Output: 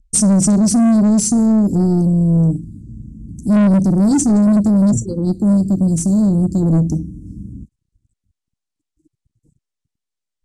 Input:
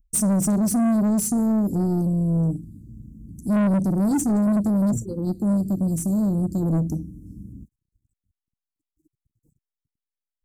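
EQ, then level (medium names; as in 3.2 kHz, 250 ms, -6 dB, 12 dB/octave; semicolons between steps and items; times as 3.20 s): low-pass 9.1 kHz 24 dB/octave; peaking EQ 1.2 kHz -4.5 dB 2.6 oct; dynamic bell 5 kHz, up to +6 dB, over -50 dBFS, Q 1.3; +8.5 dB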